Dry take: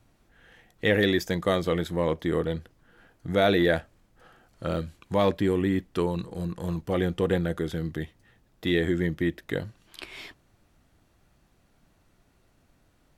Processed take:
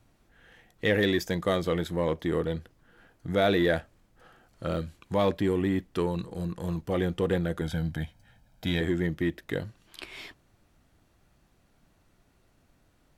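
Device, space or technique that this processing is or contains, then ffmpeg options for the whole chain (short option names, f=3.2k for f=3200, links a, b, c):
parallel distortion: -filter_complex "[0:a]asplit=2[a][b];[b]asoftclip=type=hard:threshold=-26dB,volume=-11.5dB[c];[a][c]amix=inputs=2:normalize=0,asettb=1/sr,asplit=3[d][e][f];[d]atrim=end=7.614[g];[e]atrim=start=7.61:end=8.81,asetpts=PTS-STARTPTS,afade=t=in:d=0.004:c=qsin,afade=t=out:st=1.196:d=0.004:c=qsin,aecho=1:1:1.3:0.79,atrim=end_sample=52920[h];[f]atrim=start=8.806[i];[g][h]acrossfade=d=0.004:c1=hsin:c2=qsin[j];[j][i]acrossfade=d=0.004:c1=qsin:c2=hsin,volume=-3dB"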